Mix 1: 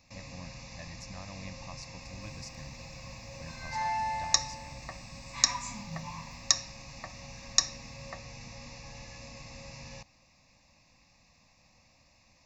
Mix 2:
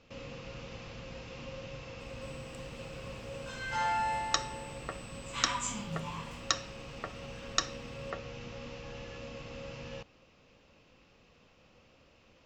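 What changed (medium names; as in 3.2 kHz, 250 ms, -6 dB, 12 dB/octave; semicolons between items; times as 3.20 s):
speech: muted; first sound: add distance through air 170 m; master: remove static phaser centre 2.1 kHz, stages 8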